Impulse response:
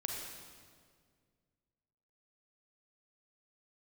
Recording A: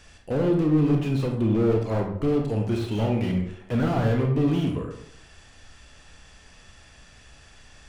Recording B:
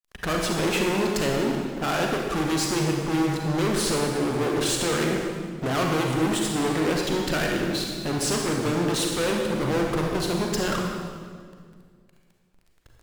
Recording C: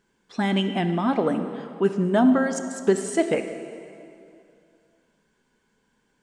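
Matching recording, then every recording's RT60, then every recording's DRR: B; 0.65 s, 1.9 s, 2.5 s; 1.5 dB, 0.0 dB, 8.0 dB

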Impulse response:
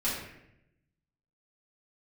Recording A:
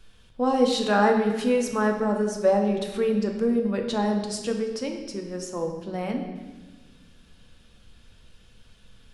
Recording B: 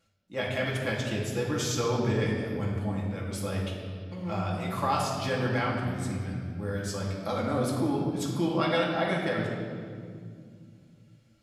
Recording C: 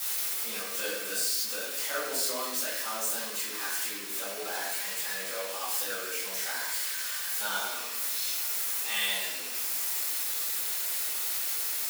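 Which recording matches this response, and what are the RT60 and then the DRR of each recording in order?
C; 1.4 s, 2.2 s, 0.80 s; 2.5 dB, -4.0 dB, -10.5 dB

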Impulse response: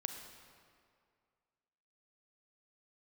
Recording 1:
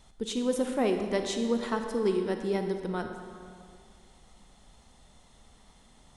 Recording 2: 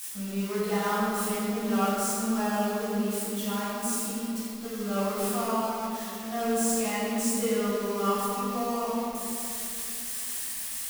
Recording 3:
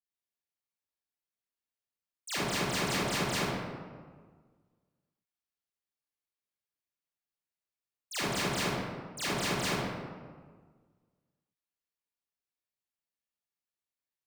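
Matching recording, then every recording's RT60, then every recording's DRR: 1; 2.2 s, 3.0 s, 1.6 s; 5.0 dB, -12.0 dB, -13.0 dB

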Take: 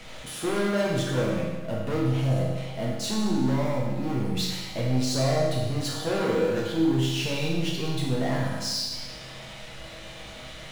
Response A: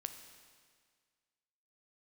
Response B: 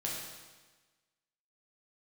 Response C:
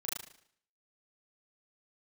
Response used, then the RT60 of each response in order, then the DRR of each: B; 1.8 s, 1.3 s, 0.60 s; 7.0 dB, -4.5 dB, -7.0 dB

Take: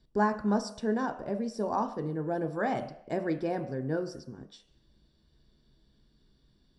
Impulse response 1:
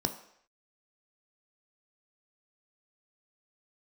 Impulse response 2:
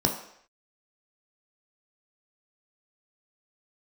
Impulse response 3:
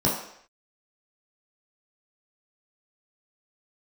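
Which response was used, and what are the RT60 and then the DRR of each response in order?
1; no single decay rate, no single decay rate, no single decay rate; 6.5 dB, 2.0 dB, -5.5 dB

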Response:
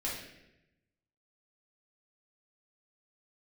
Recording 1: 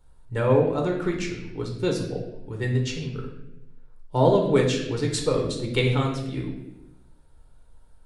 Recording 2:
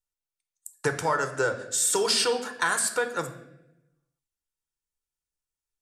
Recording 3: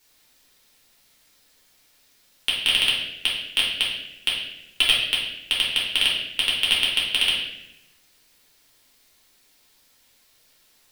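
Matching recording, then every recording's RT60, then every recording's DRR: 3; 0.90 s, 0.90 s, 0.90 s; 0.0 dB, 7.5 dB, -6.0 dB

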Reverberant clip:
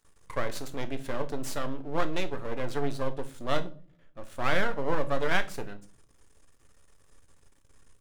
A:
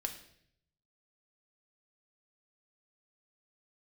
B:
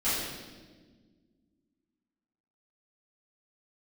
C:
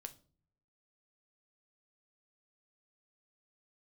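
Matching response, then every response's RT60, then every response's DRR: C; 0.65 s, 1.5 s, no single decay rate; 4.0 dB, -14.5 dB, 7.5 dB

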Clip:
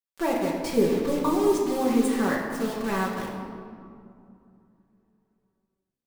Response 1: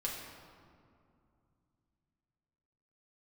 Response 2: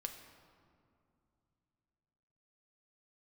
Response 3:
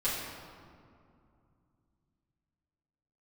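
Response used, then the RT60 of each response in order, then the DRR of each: 1; 2.5 s, 2.5 s, 2.4 s; -4.0 dB, 4.0 dB, -11.5 dB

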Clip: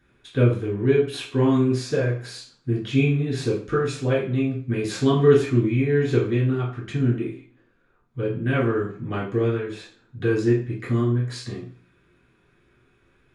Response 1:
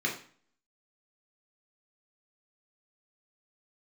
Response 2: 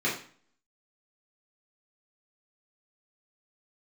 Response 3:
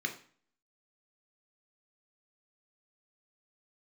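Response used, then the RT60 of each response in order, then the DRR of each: 2; 0.45 s, 0.45 s, 0.45 s; -1.5 dB, -7.5 dB, 4.0 dB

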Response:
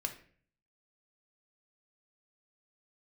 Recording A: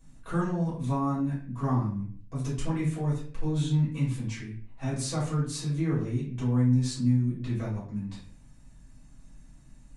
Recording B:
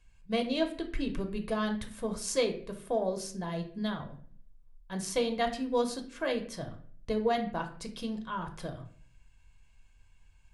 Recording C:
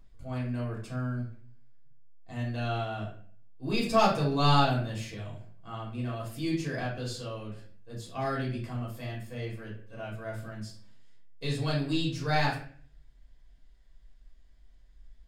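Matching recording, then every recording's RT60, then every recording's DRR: B; 0.50 s, 0.50 s, 0.50 s; -10.0 dB, 5.0 dB, -5.0 dB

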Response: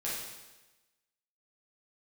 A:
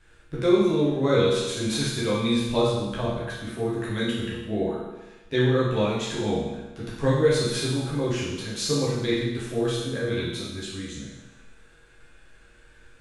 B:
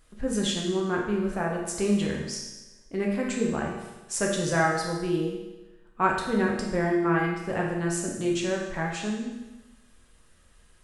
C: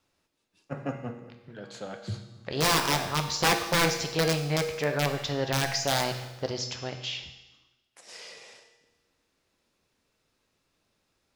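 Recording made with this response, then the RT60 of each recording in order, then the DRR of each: A; 1.1 s, 1.1 s, 1.1 s; -8.0 dB, -2.5 dB, 5.0 dB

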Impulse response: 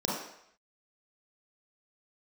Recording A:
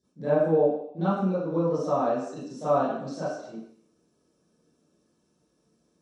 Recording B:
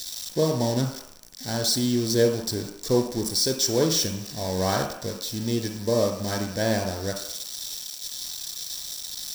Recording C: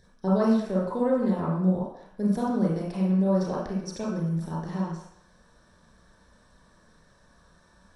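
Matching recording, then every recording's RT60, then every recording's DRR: C; 0.70 s, 0.70 s, 0.70 s; -15.0 dB, 3.0 dB, -6.0 dB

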